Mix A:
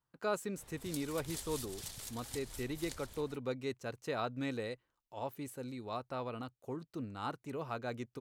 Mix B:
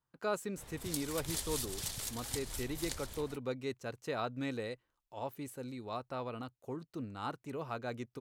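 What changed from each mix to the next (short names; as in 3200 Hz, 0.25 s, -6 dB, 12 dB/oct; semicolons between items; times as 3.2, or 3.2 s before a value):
background +6.0 dB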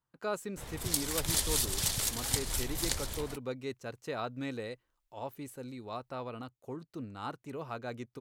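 background +8.5 dB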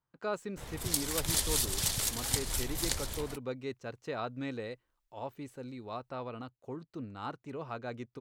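speech: add bell 12000 Hz -14.5 dB 0.98 oct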